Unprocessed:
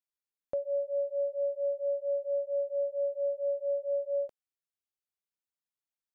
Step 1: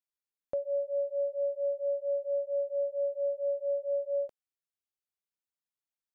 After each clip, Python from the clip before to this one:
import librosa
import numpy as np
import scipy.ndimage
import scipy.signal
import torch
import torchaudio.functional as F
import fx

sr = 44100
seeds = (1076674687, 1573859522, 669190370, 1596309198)

y = x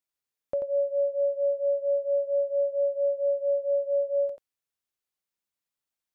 y = x + 10.0 ** (-6.0 / 20.0) * np.pad(x, (int(87 * sr / 1000.0), 0))[:len(x)]
y = y * 10.0 ** (3.5 / 20.0)